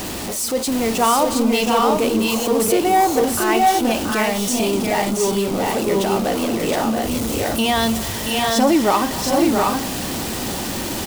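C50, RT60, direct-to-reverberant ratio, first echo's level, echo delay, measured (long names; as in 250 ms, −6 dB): no reverb audible, no reverb audible, no reverb audible, −17.0 dB, 250 ms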